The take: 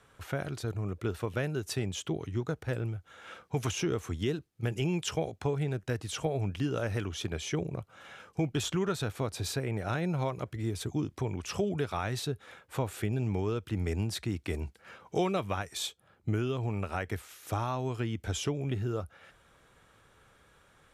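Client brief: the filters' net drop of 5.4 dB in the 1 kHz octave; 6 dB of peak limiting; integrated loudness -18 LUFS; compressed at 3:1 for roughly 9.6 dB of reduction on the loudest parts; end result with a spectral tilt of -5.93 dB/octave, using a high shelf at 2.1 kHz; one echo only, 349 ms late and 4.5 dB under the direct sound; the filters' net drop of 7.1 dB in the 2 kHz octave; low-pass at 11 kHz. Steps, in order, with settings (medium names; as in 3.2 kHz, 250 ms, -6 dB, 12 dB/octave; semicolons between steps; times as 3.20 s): low-pass 11 kHz; peaking EQ 1 kHz -5 dB; peaking EQ 2 kHz -4 dB; treble shelf 2.1 kHz -6.5 dB; compression 3:1, threshold -40 dBFS; peak limiter -33.5 dBFS; delay 349 ms -4.5 dB; trim +25 dB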